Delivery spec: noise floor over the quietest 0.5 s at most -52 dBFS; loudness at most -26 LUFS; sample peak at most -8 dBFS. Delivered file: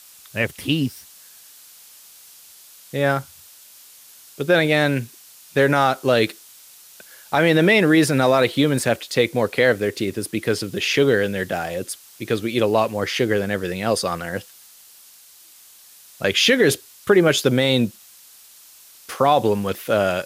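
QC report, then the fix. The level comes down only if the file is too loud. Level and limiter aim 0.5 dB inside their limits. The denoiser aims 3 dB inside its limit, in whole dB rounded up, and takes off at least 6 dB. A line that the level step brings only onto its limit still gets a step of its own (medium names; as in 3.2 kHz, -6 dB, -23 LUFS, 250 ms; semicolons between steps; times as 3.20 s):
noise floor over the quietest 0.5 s -48 dBFS: fail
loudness -19.5 LUFS: fail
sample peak -5.5 dBFS: fail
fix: trim -7 dB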